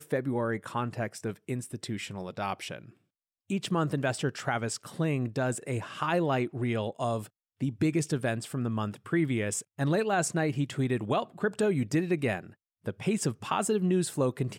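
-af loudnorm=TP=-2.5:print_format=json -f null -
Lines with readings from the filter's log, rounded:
"input_i" : "-30.4",
"input_tp" : "-15.7",
"input_lra" : "4.7",
"input_thresh" : "-40.7",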